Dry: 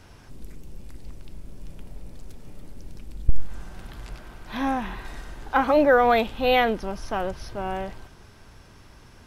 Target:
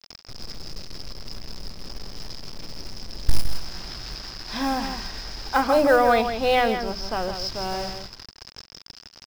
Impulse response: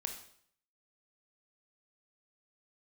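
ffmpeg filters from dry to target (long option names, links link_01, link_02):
-filter_complex "[0:a]highshelf=frequency=2200:gain=-2.5,bandreject=frequency=50:width_type=h:width=6,bandreject=frequency=100:width_type=h:width=6,bandreject=frequency=150:width_type=h:width=6,bandreject=frequency=200:width_type=h:width=6,bandreject=frequency=250:width_type=h:width=6,bandreject=frequency=300:width_type=h:width=6,bandreject=frequency=350:width_type=h:width=6,bandreject=frequency=400:width_type=h:width=6,acrusher=bits=6:mix=0:aa=0.000001,lowpass=frequency=5100:width_type=q:width=14,acrusher=bits=5:mode=log:mix=0:aa=0.000001,aecho=1:1:162:0.376,asplit=3[link_01][link_02][link_03];[link_01]afade=type=out:start_time=5.06:duration=0.02[link_04];[link_02]adynamicequalizer=threshold=0.0141:dfrequency=2800:dqfactor=0.7:tfrequency=2800:tqfactor=0.7:attack=5:release=100:ratio=0.375:range=4:mode=cutabove:tftype=highshelf,afade=type=in:start_time=5.06:duration=0.02,afade=type=out:start_time=7.33:duration=0.02[link_05];[link_03]afade=type=in:start_time=7.33:duration=0.02[link_06];[link_04][link_05][link_06]amix=inputs=3:normalize=0"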